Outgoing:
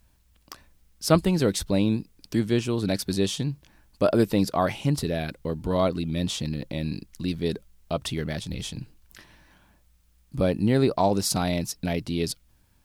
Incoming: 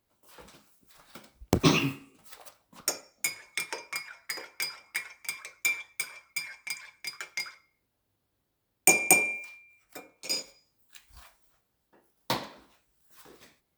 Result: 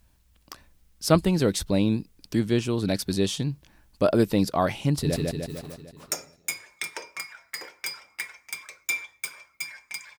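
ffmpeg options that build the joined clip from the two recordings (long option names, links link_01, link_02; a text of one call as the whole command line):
ffmpeg -i cue0.wav -i cue1.wav -filter_complex "[0:a]apad=whole_dur=10.18,atrim=end=10.18,atrim=end=5.162[link_01];[1:a]atrim=start=1.918:end=6.94[link_02];[link_01][link_02]acrossfade=duration=0.004:curve1=hsin:curve2=hsin,asplit=2[link_03][link_04];[link_04]afade=type=in:start_time=4.9:duration=0.01,afade=type=out:start_time=5.16:duration=0.01,aecho=0:1:150|300|450|600|750|900|1050|1200|1350:0.841395|0.504837|0.302902|0.181741|0.109045|0.0654269|0.0392561|0.0235537|0.0141322[link_05];[link_03][link_05]amix=inputs=2:normalize=0" out.wav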